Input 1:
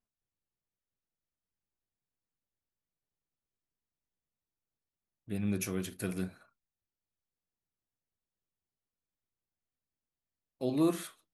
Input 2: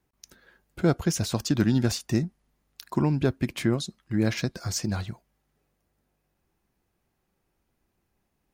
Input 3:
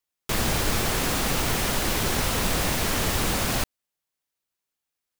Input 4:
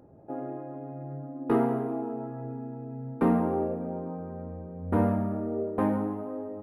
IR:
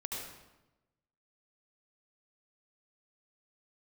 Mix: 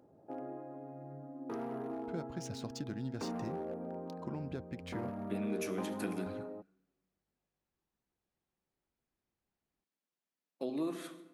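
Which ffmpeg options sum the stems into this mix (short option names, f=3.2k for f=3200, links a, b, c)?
-filter_complex "[0:a]highpass=f=180:w=0.5412,highpass=f=180:w=1.3066,highshelf=f=7k:g=-10.5,volume=1.5dB,asplit=2[a][b];[b]volume=-17.5dB[c];[1:a]adynamicsmooth=sensitivity=7.5:basefreq=3.7k,adelay=1300,volume=-14dB,asplit=3[d][e][f];[d]atrim=end=5.1,asetpts=PTS-STARTPTS,afade=t=out:st=5.096:d=0.004:c=hsin[g];[e]atrim=start=5.1:end=6.26,asetpts=PTS-STARTPTS,volume=0[h];[f]atrim=start=6.26,asetpts=PTS-STARTPTS,afade=t=in:d=0.004:c=hsin[i];[g][h][i]concat=n=3:v=0:a=1[j];[3:a]highpass=f=160:p=1,alimiter=level_in=0.5dB:limit=-24dB:level=0:latency=1:release=105,volume=-0.5dB,asoftclip=type=hard:threshold=-27.5dB,volume=-6.5dB[k];[a][j]amix=inputs=2:normalize=0,acompressor=threshold=-36dB:ratio=6,volume=0dB[l];[4:a]atrim=start_sample=2205[m];[c][m]afir=irnorm=-1:irlink=0[n];[k][l][n]amix=inputs=3:normalize=0,lowshelf=f=81:g=-5.5"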